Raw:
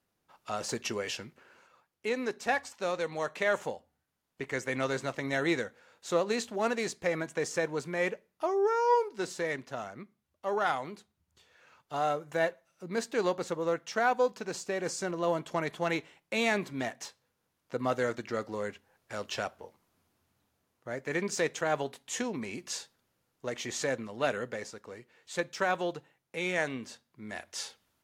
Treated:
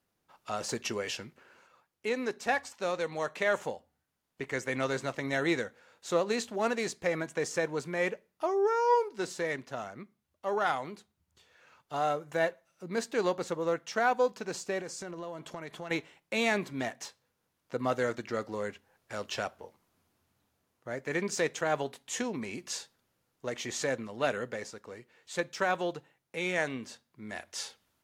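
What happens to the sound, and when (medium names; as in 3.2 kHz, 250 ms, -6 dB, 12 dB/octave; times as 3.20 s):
14.81–15.91 s: compression 4:1, threshold -38 dBFS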